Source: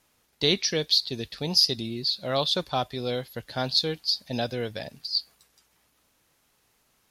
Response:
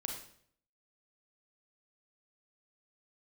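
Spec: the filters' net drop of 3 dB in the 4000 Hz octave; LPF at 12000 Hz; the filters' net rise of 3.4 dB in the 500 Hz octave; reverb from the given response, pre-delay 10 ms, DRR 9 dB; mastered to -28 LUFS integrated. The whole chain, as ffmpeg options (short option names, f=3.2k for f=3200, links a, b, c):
-filter_complex "[0:a]lowpass=12k,equalizer=f=500:t=o:g=4,equalizer=f=4k:t=o:g=-3.5,asplit=2[a][b];[1:a]atrim=start_sample=2205,adelay=10[c];[b][c]afir=irnorm=-1:irlink=0,volume=-9dB[d];[a][d]amix=inputs=2:normalize=0,volume=-1.5dB"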